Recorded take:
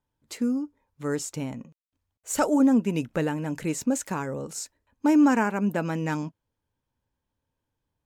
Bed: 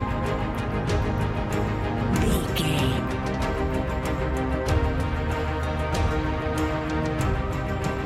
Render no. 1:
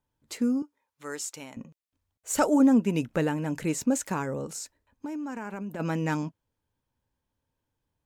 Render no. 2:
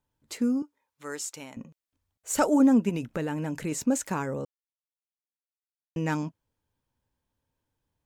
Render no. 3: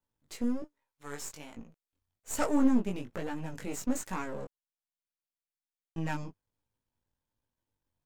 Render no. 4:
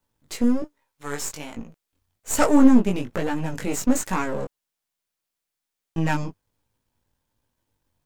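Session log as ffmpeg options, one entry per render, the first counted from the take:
-filter_complex "[0:a]asettb=1/sr,asplit=3[s0][s1][s2];[s0]atrim=end=0.624[s3];[s1]atrim=start=0.62:end=1.57,asetpts=PTS-STARTPTS,afade=t=in:d=0.004:c=qsin,afade=t=out:st=0.946:d=0.004:c=qsin,highpass=f=1200:p=1[s4];[s2]atrim=start=1.566[s5];[s3][s4]acrossfade=d=0.004:c1=hsin:c2=qsin[s6];[s6][s5]acrossfade=d=0.004:c1=qsin:c2=hsin,asplit=3[s7][s8][s9];[s7]afade=t=out:st=4.51:d=0.02[s10];[s8]acompressor=threshold=0.0251:ratio=12:attack=3.2:release=140:knee=1:detection=peak,afade=t=in:st=4.51:d=0.02,afade=t=out:st=5.79:d=0.02[s11];[s9]afade=t=in:st=5.79:d=0.02[s12];[s10][s11][s12]amix=inputs=3:normalize=0"
-filter_complex "[0:a]asettb=1/sr,asplit=3[s0][s1][s2];[s0]atrim=end=2.894[s3];[s1]atrim=start=2.89:end=3.72,asetpts=PTS-STARTPTS,afade=t=in:d=0.004:c=qsin,afade=t=out:st=0.826:d=0.004:c=qsin,acompressor=threshold=0.0501:ratio=5:attack=3.2:release=140:knee=1:detection=peak[s4];[s2]atrim=start=3.716[s5];[s3][s4]acrossfade=d=0.004:c1=hsin:c2=qsin[s6];[s6][s5]acrossfade=d=0.004:c1=qsin:c2=hsin,asplit=3[s7][s8][s9];[s7]atrim=end=4.45,asetpts=PTS-STARTPTS,afade=t=out:st=4.446:d=0.004:c=hsin[s10];[s8]atrim=start=4.45:end=5.96,asetpts=PTS-STARTPTS,volume=0[s11];[s9]atrim=start=5.96,asetpts=PTS-STARTPTS,afade=t=in:d=0.004:c=hsin[s12];[s10][s11][s12]concat=n=3:v=0:a=1"
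-af "aeval=exprs='if(lt(val(0),0),0.251*val(0),val(0))':c=same,flanger=delay=17:depth=4.6:speed=1.2"
-af "volume=3.55"

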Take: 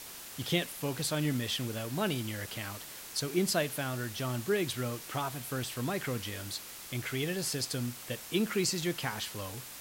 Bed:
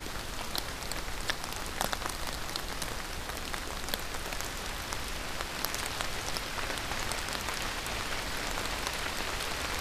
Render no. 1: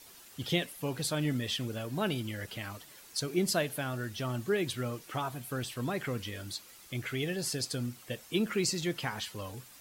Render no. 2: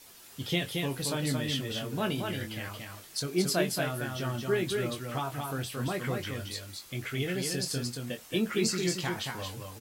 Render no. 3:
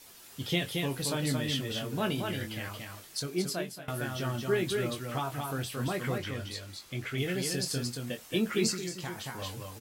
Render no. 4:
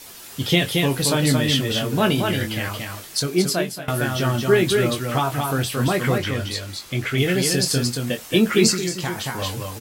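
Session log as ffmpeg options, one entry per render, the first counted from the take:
-af "afftdn=nr=10:nf=-46"
-filter_complex "[0:a]asplit=2[s0][s1];[s1]adelay=22,volume=0.422[s2];[s0][s2]amix=inputs=2:normalize=0,asplit=2[s3][s4];[s4]aecho=0:1:225:0.631[s5];[s3][s5]amix=inputs=2:normalize=0"
-filter_complex "[0:a]asettb=1/sr,asplit=3[s0][s1][s2];[s0]atrim=end=6.184[s3];[s1]atrim=start=6.18:end=7.18,asetpts=PTS-STARTPTS,afade=t=in:d=0.004:c=qsin,afade=t=out:st=0.996:d=0.004:c=qsin,highshelf=f=8000:g=-8[s4];[s2]atrim=start=7.176[s5];[s3][s4]acrossfade=d=0.004:c1=hsin:c2=qsin[s6];[s6][s5]acrossfade=d=0.004:c1=qsin:c2=hsin,asettb=1/sr,asplit=3[s7][s8][s9];[s7]atrim=end=8.724[s10];[s8]atrim=start=8.72:end=9.42,asetpts=PTS-STARTPTS,afade=t=in:d=0.004:c=qsin,afade=t=out:st=0.696:d=0.004:c=qsin,acrossover=split=2000|5500[s11][s12][s13];[s11]acompressor=threshold=0.0158:ratio=4[s14];[s12]acompressor=threshold=0.00355:ratio=4[s15];[s13]acompressor=threshold=0.00708:ratio=4[s16];[s14][s15][s16]amix=inputs=3:normalize=0[s17];[s9]atrim=start=9.416[s18];[s10][s17]acrossfade=d=0.004:c1=hsin:c2=qsin[s19];[s19][s18]acrossfade=d=0.004:c1=qsin:c2=hsin,asplit=2[s20][s21];[s20]atrim=end=3.88,asetpts=PTS-STARTPTS,afade=t=out:st=2.79:d=1.09:c=qsin:silence=0.0794328[s22];[s21]atrim=start=3.88,asetpts=PTS-STARTPTS,afade=t=in:d=0.004:c=hsin:silence=0.0794328[s23];[s22][s23]concat=n=2:v=0:a=1"
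-af "volume=3.98,alimiter=limit=0.708:level=0:latency=1"

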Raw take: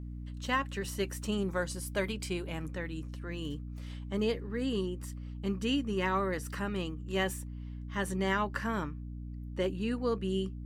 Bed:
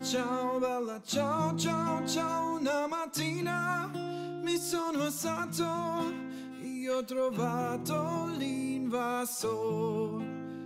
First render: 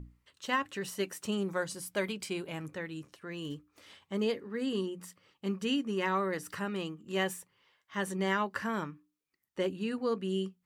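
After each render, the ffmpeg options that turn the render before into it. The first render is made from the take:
-af "bandreject=f=60:t=h:w=6,bandreject=f=120:t=h:w=6,bandreject=f=180:t=h:w=6,bandreject=f=240:t=h:w=6,bandreject=f=300:t=h:w=6"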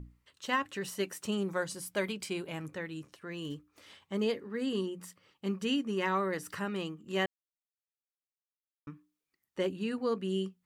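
-filter_complex "[0:a]asplit=3[s0][s1][s2];[s0]atrim=end=7.26,asetpts=PTS-STARTPTS,afade=t=out:st=7.256:d=0.004:c=hsin[s3];[s1]atrim=start=7.26:end=8.87,asetpts=PTS-STARTPTS,volume=0[s4];[s2]atrim=start=8.87,asetpts=PTS-STARTPTS,afade=t=in:d=0.004:c=hsin[s5];[s3][s4][s5]concat=n=3:v=0:a=1"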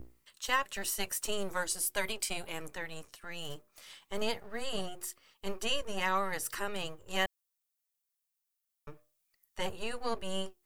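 -filter_complex "[0:a]acrossover=split=490[s0][s1];[s0]aeval=exprs='abs(val(0))':c=same[s2];[s1]crystalizer=i=2:c=0[s3];[s2][s3]amix=inputs=2:normalize=0"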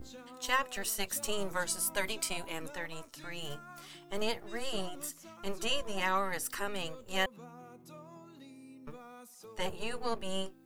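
-filter_complex "[1:a]volume=0.112[s0];[0:a][s0]amix=inputs=2:normalize=0"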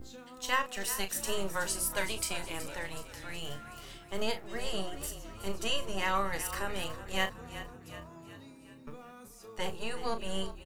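-filter_complex "[0:a]asplit=2[s0][s1];[s1]adelay=36,volume=0.335[s2];[s0][s2]amix=inputs=2:normalize=0,asplit=7[s3][s4][s5][s6][s7][s8][s9];[s4]adelay=372,afreqshift=-34,volume=0.224[s10];[s5]adelay=744,afreqshift=-68,volume=0.123[s11];[s6]adelay=1116,afreqshift=-102,volume=0.0676[s12];[s7]adelay=1488,afreqshift=-136,volume=0.0372[s13];[s8]adelay=1860,afreqshift=-170,volume=0.0204[s14];[s9]adelay=2232,afreqshift=-204,volume=0.0112[s15];[s3][s10][s11][s12][s13][s14][s15]amix=inputs=7:normalize=0"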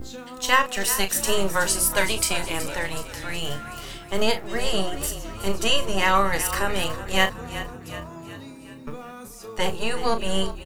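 -af "volume=3.55"

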